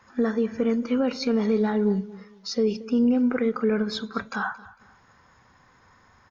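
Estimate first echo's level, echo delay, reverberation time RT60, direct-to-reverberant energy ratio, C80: -19.5 dB, 226 ms, no reverb, no reverb, no reverb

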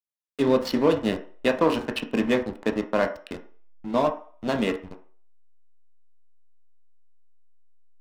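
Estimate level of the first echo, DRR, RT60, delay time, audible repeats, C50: no echo, 4.5 dB, 0.45 s, no echo, no echo, 12.0 dB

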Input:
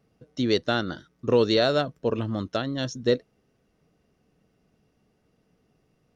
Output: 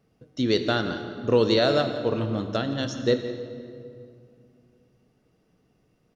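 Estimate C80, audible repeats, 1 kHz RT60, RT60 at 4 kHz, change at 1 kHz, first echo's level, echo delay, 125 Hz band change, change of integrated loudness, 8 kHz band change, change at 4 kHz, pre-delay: 8.5 dB, 1, 2.2 s, 1.6 s, +1.0 dB, -15.5 dB, 172 ms, +1.5 dB, +0.5 dB, no reading, +0.5 dB, 20 ms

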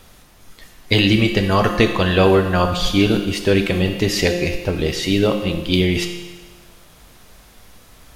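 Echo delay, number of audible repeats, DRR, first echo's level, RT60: no echo, no echo, 5.0 dB, no echo, 1.3 s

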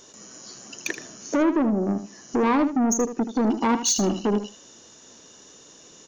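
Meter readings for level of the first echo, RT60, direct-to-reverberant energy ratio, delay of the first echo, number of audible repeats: -11.0 dB, no reverb, no reverb, 78 ms, 2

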